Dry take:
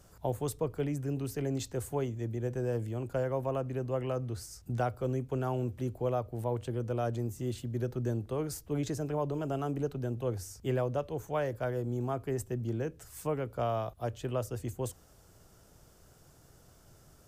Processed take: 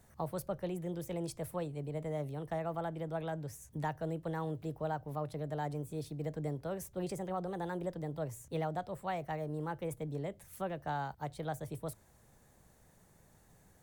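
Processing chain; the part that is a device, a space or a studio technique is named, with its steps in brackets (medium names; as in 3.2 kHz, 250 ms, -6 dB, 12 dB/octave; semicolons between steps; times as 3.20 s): nightcore (tape speed +25%); trim -5 dB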